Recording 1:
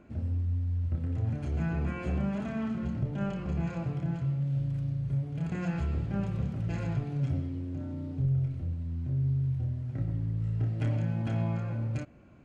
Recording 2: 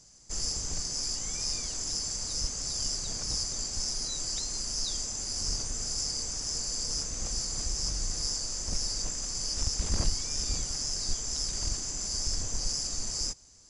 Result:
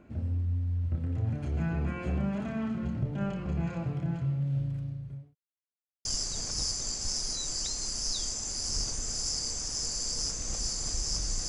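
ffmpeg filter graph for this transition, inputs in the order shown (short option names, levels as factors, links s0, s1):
-filter_complex "[0:a]apad=whole_dur=11.48,atrim=end=11.48,asplit=2[s0][s1];[s0]atrim=end=5.35,asetpts=PTS-STARTPTS,afade=t=out:st=4.58:d=0.77[s2];[s1]atrim=start=5.35:end=6.05,asetpts=PTS-STARTPTS,volume=0[s3];[1:a]atrim=start=2.77:end=8.2,asetpts=PTS-STARTPTS,afade=t=in:d=0.004:c=hsin[s4];[s2][s3][s4]concat=n=3:v=0:a=1"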